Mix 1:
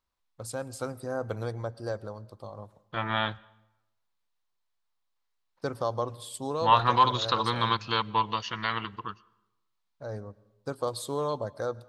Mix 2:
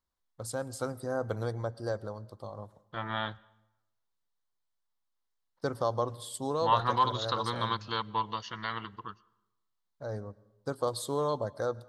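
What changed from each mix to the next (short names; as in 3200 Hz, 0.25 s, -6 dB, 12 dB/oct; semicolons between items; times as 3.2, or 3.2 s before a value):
second voice -5.0 dB; master: add bell 2500 Hz -10 dB 0.27 oct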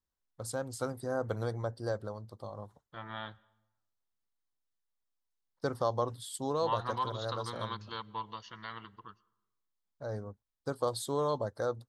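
first voice: send off; second voice -8.0 dB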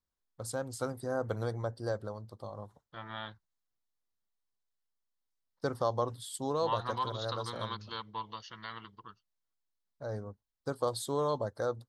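second voice: add synth low-pass 5700 Hz, resonance Q 1.6; reverb: off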